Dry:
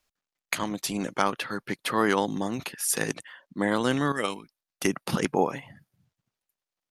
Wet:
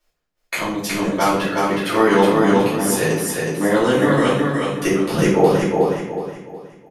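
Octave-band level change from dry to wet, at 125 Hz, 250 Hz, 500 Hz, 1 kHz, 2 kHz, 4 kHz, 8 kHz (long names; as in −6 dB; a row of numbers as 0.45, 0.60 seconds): +12.0, +11.5, +13.5, +9.5, +8.0, +7.0, +5.5 decibels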